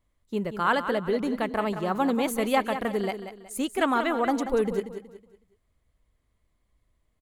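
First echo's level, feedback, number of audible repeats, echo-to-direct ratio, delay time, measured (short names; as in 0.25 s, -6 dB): -10.0 dB, 34%, 3, -9.5 dB, 0.185 s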